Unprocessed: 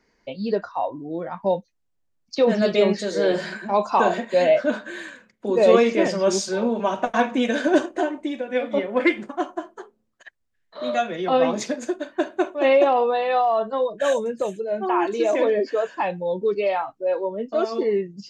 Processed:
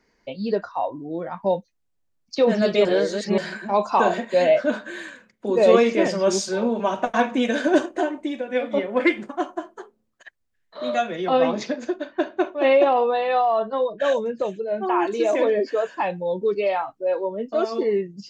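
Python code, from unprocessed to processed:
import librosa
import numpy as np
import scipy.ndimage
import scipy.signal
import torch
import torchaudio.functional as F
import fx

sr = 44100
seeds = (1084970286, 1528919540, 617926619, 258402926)

y = fx.lowpass(x, sr, hz=5400.0, slope=24, at=(11.48, 14.81))
y = fx.edit(y, sr, fx.reverse_span(start_s=2.85, length_s=0.53), tone=tone)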